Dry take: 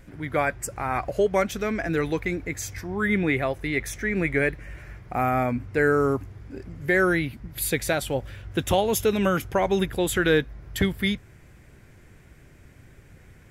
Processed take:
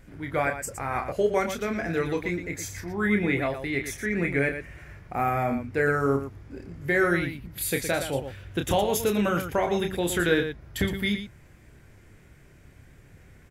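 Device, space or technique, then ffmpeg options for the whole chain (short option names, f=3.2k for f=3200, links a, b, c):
slapback doubling: -filter_complex "[0:a]asplit=3[a][b][c];[b]adelay=29,volume=-6dB[d];[c]adelay=116,volume=-9dB[e];[a][d][e]amix=inputs=3:normalize=0,volume=-3dB"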